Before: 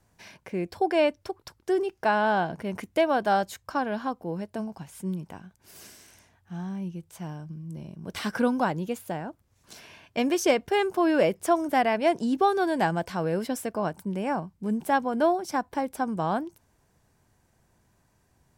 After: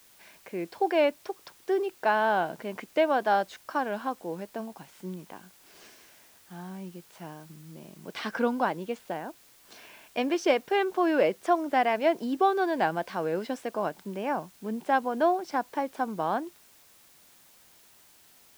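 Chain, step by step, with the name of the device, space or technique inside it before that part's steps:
dictaphone (band-pass filter 270–4,300 Hz; automatic gain control gain up to 5.5 dB; tape wow and flutter; white noise bed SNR 28 dB)
level −6 dB

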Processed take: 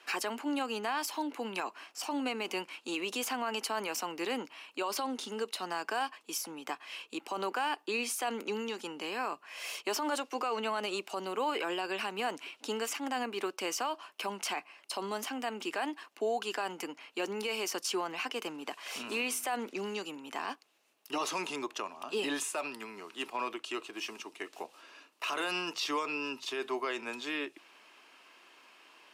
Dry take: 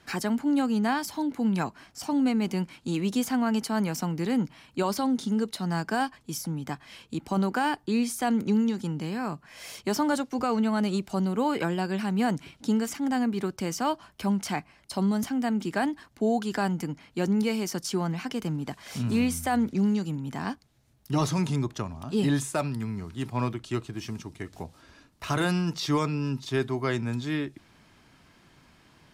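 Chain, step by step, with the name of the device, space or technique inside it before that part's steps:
laptop speaker (high-pass filter 360 Hz 24 dB per octave; parametric band 1,100 Hz +5 dB 0.42 octaves; parametric band 2,700 Hz +11 dB 0.34 octaves; brickwall limiter −23.5 dBFS, peak gain reduction 10 dB)
level −1 dB

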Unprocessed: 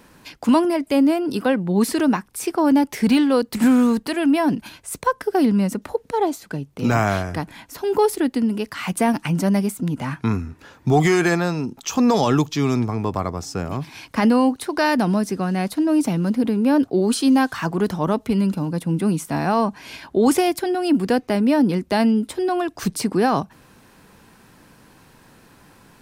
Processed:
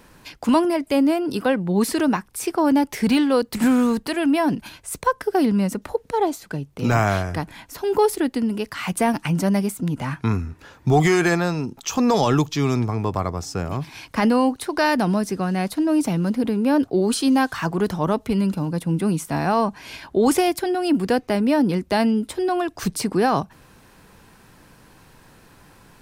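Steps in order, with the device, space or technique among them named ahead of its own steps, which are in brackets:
low shelf boost with a cut just above (low-shelf EQ 61 Hz +7 dB; parametric band 240 Hz −3 dB 0.76 octaves)

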